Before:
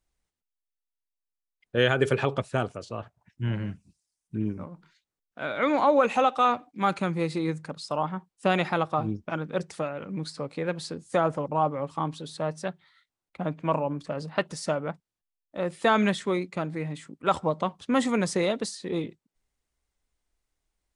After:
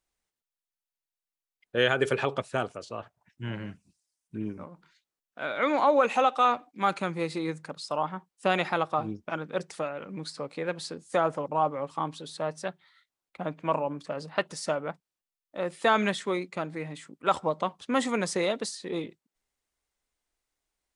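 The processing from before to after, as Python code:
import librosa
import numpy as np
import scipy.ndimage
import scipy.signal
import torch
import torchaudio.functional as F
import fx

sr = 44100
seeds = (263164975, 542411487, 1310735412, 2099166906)

y = fx.low_shelf(x, sr, hz=200.0, db=-11.0)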